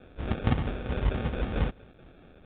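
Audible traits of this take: aliases and images of a low sample rate 1 kHz, jitter 0%; tremolo saw down 4.5 Hz, depth 40%; a quantiser's noise floor 10-bit, dither none; µ-law

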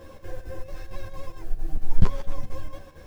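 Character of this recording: chopped level 4.4 Hz, depth 60%, duty 75%; a shimmering, thickened sound

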